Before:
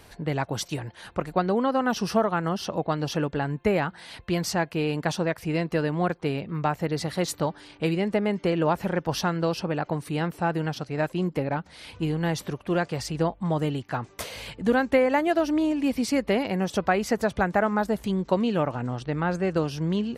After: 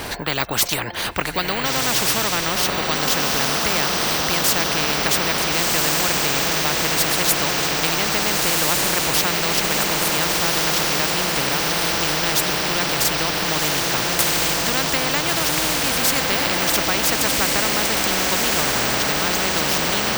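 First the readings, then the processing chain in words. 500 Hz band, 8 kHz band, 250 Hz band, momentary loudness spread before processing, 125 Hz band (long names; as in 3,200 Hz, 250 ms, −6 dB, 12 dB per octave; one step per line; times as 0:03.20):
+0.5 dB, +20.5 dB, −1.5 dB, 7 LU, −1.0 dB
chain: feedback delay with all-pass diffusion 1,445 ms, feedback 62%, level −3 dB
bad sample-rate conversion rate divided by 2×, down filtered, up hold
every bin compressed towards the loudest bin 4 to 1
level +7 dB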